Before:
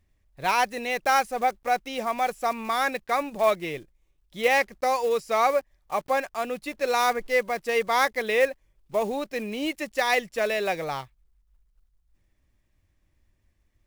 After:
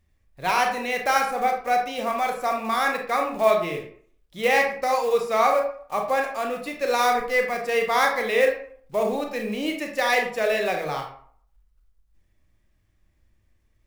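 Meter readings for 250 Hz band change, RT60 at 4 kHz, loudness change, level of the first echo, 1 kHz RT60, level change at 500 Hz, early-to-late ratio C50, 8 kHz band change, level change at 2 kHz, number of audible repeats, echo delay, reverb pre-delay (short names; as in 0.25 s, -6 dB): +2.5 dB, 0.35 s, +2.5 dB, none, 0.55 s, +2.5 dB, 6.0 dB, +1.0 dB, +2.5 dB, none, none, 25 ms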